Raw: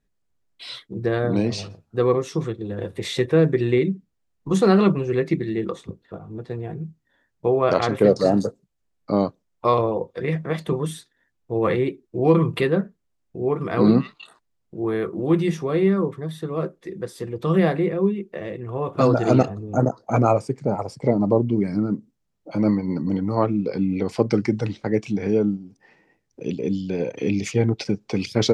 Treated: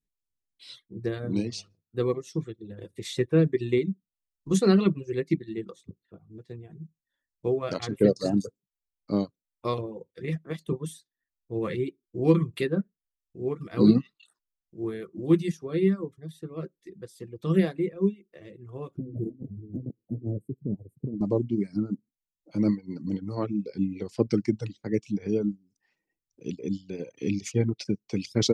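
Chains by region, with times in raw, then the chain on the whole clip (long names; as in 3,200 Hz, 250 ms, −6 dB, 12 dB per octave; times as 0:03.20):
0:18.97–0:21.21: inverse Chebyshev band-stop filter 1,300–5,100 Hz, stop band 70 dB + compressor whose output falls as the input rises −25 dBFS
whole clip: reverb reduction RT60 0.8 s; drawn EQ curve 340 Hz 0 dB, 780 Hz −10 dB, 6,500 Hz +5 dB; expander for the loud parts 1.5 to 1, over −40 dBFS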